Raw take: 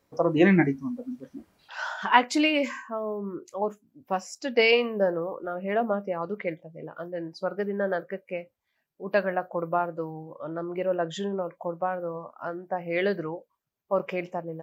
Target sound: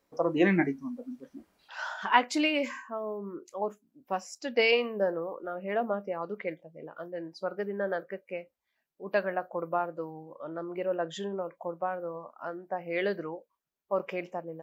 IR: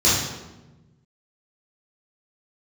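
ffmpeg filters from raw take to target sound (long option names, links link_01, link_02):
-af "equalizer=frequency=110:width_type=o:width=0.96:gain=-11,volume=-3.5dB"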